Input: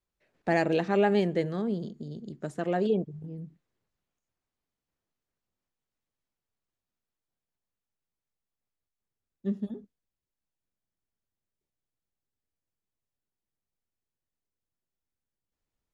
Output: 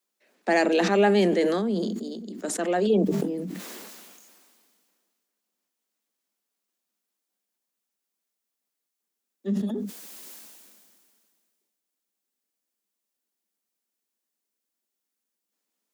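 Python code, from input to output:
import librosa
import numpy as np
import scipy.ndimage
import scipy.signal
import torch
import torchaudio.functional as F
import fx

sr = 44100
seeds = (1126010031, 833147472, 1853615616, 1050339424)

y = scipy.signal.sosfilt(scipy.signal.butter(16, 190.0, 'highpass', fs=sr, output='sos'), x)
y = fx.high_shelf(y, sr, hz=4200.0, db=9.5)
y = fx.sustainer(y, sr, db_per_s=27.0)
y = y * librosa.db_to_amplitude(3.5)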